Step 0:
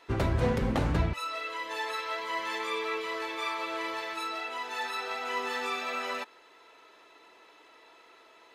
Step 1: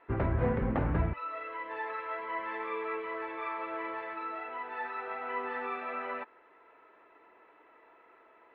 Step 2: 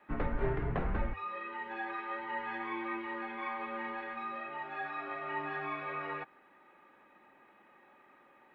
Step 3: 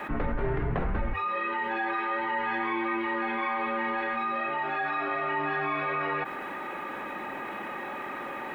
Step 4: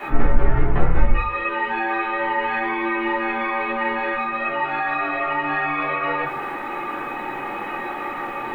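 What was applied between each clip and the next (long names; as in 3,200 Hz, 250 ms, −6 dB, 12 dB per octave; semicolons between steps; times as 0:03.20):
low-pass filter 2,100 Hz 24 dB per octave; level −2 dB
high-shelf EQ 2,400 Hz +8.5 dB; frequency shifter −99 Hz; level −3.5 dB
envelope flattener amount 70%; level +1.5 dB
rectangular room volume 130 cubic metres, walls furnished, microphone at 3.3 metres; level −1 dB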